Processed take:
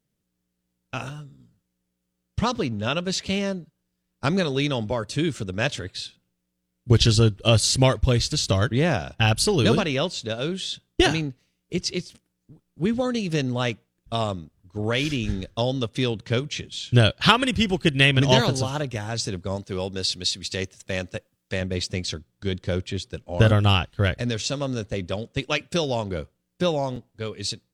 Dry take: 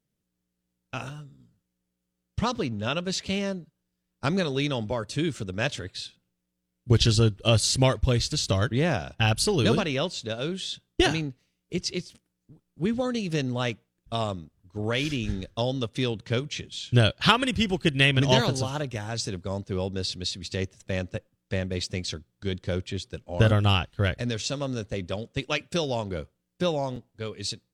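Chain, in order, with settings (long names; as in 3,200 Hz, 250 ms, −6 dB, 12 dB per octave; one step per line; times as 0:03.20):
0:19.56–0:21.61: spectral tilt +1.5 dB per octave
level +3 dB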